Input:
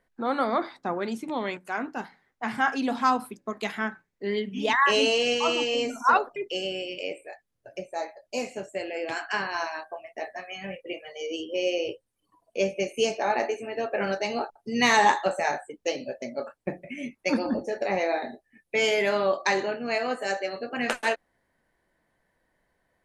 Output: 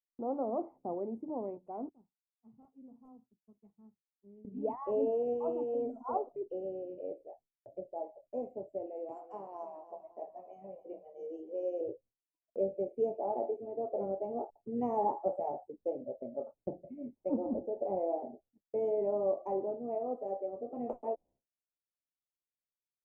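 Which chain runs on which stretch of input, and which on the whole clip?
1.89–4.45 passive tone stack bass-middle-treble 6-0-2 + wrapped overs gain 36 dB + Doppler distortion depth 0.19 ms
8.86–11.81 RIAA curve recording + lo-fi delay 0.283 s, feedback 55%, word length 9-bit, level -14.5 dB
whole clip: inverse Chebyshev low-pass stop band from 1500 Hz, stop band 40 dB; expander -52 dBFS; dynamic EQ 180 Hz, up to -6 dB, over -49 dBFS, Q 2.1; gain -5.5 dB

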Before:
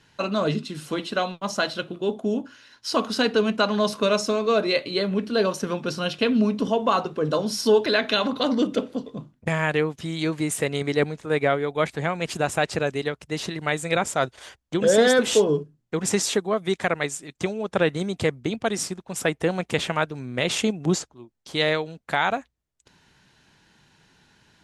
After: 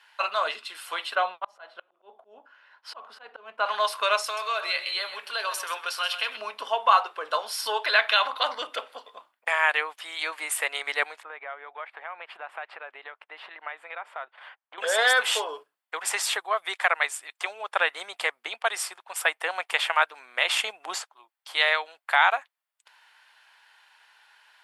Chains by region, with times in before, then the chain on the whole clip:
1.15–3.66 tilt -4 dB/oct + auto swell 0.474 s + mismatched tape noise reduction decoder only
4.24–6.37 tilt +2 dB/oct + compressor 4:1, threshold -24 dBFS + echo 0.13 s -11.5 dB
11.23–14.78 compressor 4:1, threshold -30 dBFS + air absorption 480 m
whole clip: HPF 810 Hz 24 dB/oct; bell 6300 Hz -12.5 dB 0.74 oct; notch 3900 Hz, Q 18; gain +5 dB

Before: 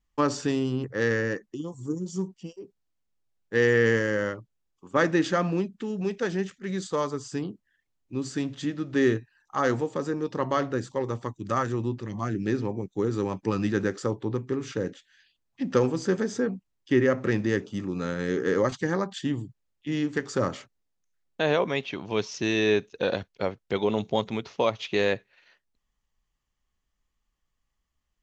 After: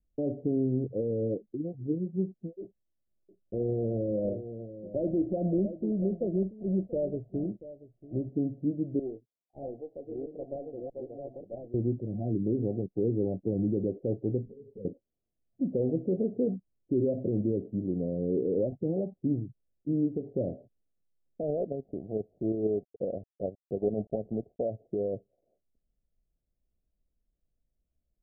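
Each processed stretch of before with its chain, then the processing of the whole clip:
2.6–8.29 block floating point 3-bit + ripple EQ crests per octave 1.3, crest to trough 7 dB + echo 0.684 s -18 dB
8.99–11.74 reverse delay 0.635 s, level -2 dB + HPF 1200 Hz 6 dB/oct + tube stage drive 19 dB, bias 0.65
14.45–14.85 compressor 20:1, threshold -40 dBFS + ripple EQ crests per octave 0.89, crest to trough 16 dB + ensemble effect
21.43–24.61 HPF 49 Hz 24 dB/oct + transient shaper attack -5 dB, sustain -10 dB + companded quantiser 4-bit
whole clip: limiter -18.5 dBFS; steep low-pass 710 Hz 96 dB/oct

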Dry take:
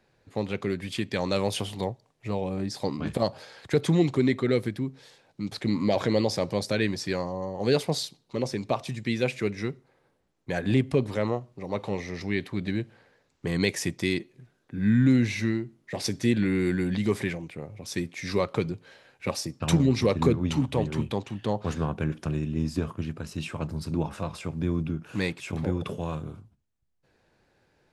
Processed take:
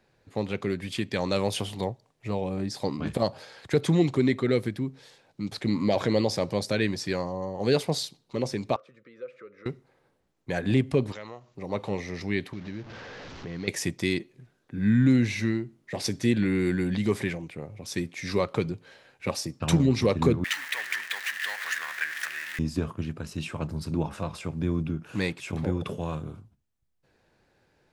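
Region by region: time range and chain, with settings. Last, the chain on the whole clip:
8.76–9.66 compressor 4:1, threshold -30 dBFS + double band-pass 810 Hz, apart 1.3 oct
11.12–11.55 tilt shelf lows -7 dB, about 710 Hz + compressor 2:1, threshold -46 dBFS + careless resampling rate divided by 3×, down none, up filtered
12.53–13.68 delta modulation 32 kbps, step -35.5 dBFS + high shelf 4700 Hz -8.5 dB + compressor 2:1, threshold -39 dBFS
20.44–22.59 zero-crossing step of -31 dBFS + resonant high-pass 1800 Hz, resonance Q 8.1 + high shelf 9300 Hz +3.5 dB
whole clip: dry

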